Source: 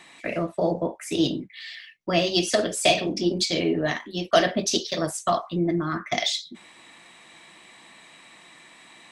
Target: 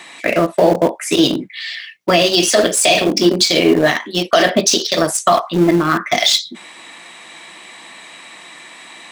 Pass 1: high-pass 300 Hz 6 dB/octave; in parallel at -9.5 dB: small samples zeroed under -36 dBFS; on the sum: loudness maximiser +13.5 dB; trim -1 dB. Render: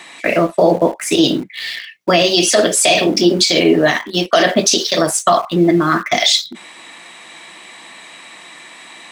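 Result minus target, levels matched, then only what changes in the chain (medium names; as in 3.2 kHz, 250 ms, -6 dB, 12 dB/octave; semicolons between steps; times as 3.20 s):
small samples zeroed: distortion -12 dB
change: small samples zeroed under -25.5 dBFS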